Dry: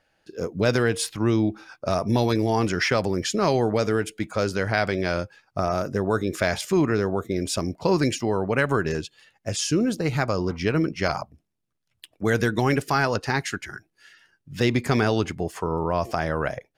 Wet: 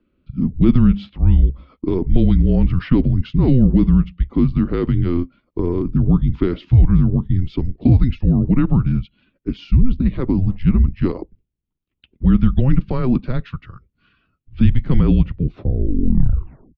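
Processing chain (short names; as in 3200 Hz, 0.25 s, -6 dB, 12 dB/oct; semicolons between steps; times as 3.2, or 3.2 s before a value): tape stop at the end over 1.39 s; ten-band EQ 125 Hz +6 dB, 250 Hz +12 dB, 500 Hz +12 dB, 1000 Hz -8 dB, 2000 Hz -9 dB; mistuned SSB -260 Hz 210–3600 Hz; gain -1 dB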